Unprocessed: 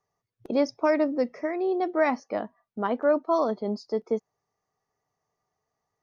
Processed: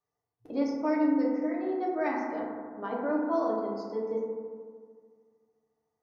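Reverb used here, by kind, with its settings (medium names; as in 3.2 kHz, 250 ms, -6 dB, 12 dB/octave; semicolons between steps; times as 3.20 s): FDN reverb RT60 1.9 s, low-frequency decay 1.05×, high-frequency decay 0.25×, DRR -5 dB; trim -12 dB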